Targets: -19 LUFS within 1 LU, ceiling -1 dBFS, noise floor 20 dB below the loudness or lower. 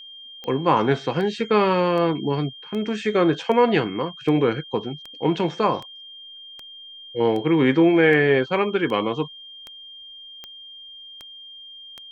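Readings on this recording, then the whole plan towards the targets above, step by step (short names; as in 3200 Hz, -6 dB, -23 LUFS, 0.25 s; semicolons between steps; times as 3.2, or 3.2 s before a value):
clicks 16; steady tone 3200 Hz; tone level -39 dBFS; loudness -21.0 LUFS; peak -4.5 dBFS; loudness target -19.0 LUFS
-> de-click; notch 3200 Hz, Q 30; gain +2 dB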